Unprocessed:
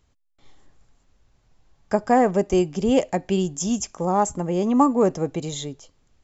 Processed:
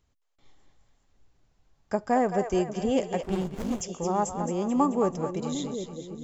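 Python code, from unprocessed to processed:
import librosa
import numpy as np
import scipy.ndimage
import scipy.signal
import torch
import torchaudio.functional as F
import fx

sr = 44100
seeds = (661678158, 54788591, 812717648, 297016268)

y = fx.echo_split(x, sr, split_hz=490.0, low_ms=751, high_ms=218, feedback_pct=52, wet_db=-7.5)
y = fx.running_max(y, sr, window=33, at=(3.23, 3.81))
y = y * librosa.db_to_amplitude(-6.5)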